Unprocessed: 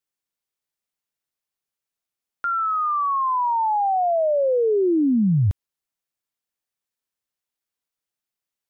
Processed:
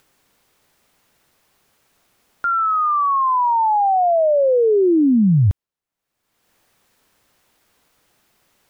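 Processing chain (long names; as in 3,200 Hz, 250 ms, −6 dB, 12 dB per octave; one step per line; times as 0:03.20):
upward compression, threshold −38 dBFS
one half of a high-frequency compander decoder only
level +4.5 dB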